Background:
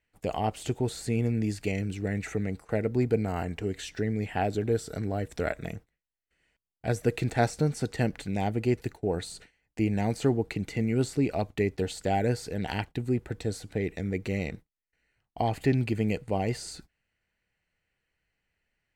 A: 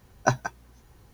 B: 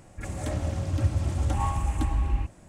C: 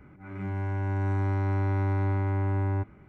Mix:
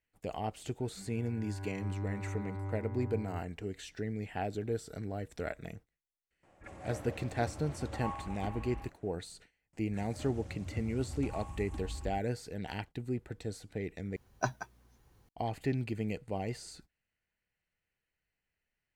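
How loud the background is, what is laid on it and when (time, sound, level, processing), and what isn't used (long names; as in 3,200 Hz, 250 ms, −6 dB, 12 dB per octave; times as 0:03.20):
background −8 dB
0:00.57: mix in C −11.5 dB + spectral dynamics exaggerated over time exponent 3
0:06.43: mix in B −8 dB + bass and treble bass −12 dB, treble −14 dB
0:09.73: mix in B −16 dB
0:14.16: overwrite with A −10 dB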